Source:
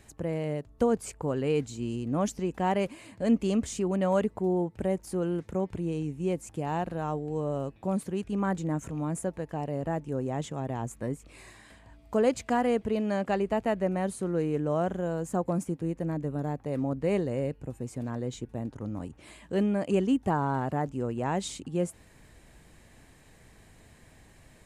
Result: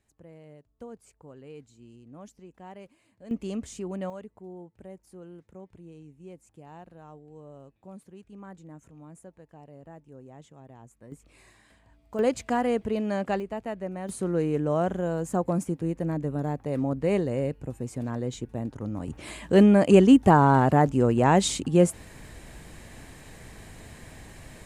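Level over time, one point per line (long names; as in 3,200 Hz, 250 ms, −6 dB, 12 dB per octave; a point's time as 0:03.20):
−18 dB
from 0:03.31 −6 dB
from 0:04.10 −16 dB
from 0:11.12 −6.5 dB
from 0:12.19 +0.5 dB
from 0:13.40 −6 dB
from 0:14.09 +2.5 dB
from 0:19.08 +10 dB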